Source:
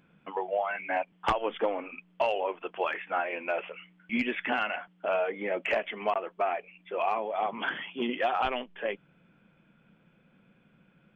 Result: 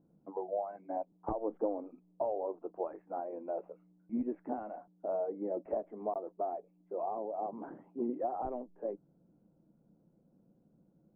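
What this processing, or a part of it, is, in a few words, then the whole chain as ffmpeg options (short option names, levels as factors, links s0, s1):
under water: -af "lowpass=f=760:w=0.5412,lowpass=f=760:w=1.3066,equalizer=f=310:t=o:w=0.31:g=7,volume=0.562"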